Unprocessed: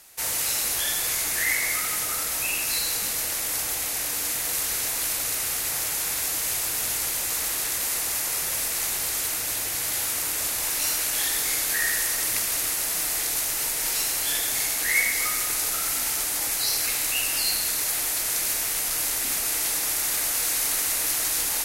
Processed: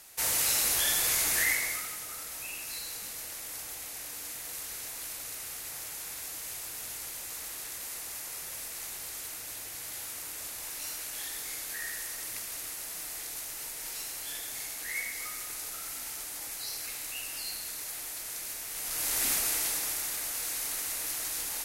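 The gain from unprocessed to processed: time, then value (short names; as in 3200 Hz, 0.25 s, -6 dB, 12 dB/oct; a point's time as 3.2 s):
1.39 s -1.5 dB
1.98 s -13 dB
18.67 s -13 dB
19.24 s -1.5 dB
20.17 s -9.5 dB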